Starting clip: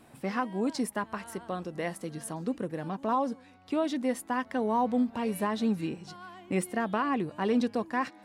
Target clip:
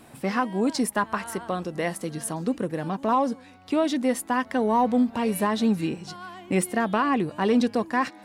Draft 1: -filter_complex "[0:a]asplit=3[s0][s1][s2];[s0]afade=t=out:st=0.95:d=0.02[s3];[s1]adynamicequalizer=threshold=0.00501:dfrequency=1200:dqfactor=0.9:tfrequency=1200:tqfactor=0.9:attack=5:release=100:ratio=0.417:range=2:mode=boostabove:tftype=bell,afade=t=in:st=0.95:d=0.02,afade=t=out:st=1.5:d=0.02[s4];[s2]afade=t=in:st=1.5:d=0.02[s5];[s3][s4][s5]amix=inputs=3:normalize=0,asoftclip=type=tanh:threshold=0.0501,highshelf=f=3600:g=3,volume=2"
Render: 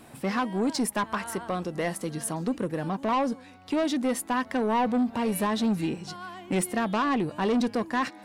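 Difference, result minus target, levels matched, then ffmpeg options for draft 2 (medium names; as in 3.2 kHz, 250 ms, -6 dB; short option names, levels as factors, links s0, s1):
saturation: distortion +16 dB
-filter_complex "[0:a]asplit=3[s0][s1][s2];[s0]afade=t=out:st=0.95:d=0.02[s3];[s1]adynamicequalizer=threshold=0.00501:dfrequency=1200:dqfactor=0.9:tfrequency=1200:tqfactor=0.9:attack=5:release=100:ratio=0.417:range=2:mode=boostabove:tftype=bell,afade=t=in:st=0.95:d=0.02,afade=t=out:st=1.5:d=0.02[s4];[s2]afade=t=in:st=1.5:d=0.02[s5];[s3][s4][s5]amix=inputs=3:normalize=0,asoftclip=type=tanh:threshold=0.178,highshelf=f=3600:g=3,volume=2"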